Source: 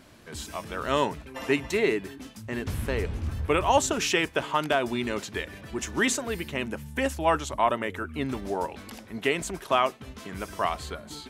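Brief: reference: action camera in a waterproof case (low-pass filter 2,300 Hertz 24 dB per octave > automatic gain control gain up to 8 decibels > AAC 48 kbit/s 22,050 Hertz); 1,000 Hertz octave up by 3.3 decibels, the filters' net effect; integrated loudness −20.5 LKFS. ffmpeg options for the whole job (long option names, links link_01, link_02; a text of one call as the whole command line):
ffmpeg -i in.wav -af "lowpass=frequency=2300:width=0.5412,lowpass=frequency=2300:width=1.3066,equalizer=frequency=1000:width_type=o:gain=4,dynaudnorm=maxgain=8dB,volume=7dB" -ar 22050 -c:a aac -b:a 48k out.aac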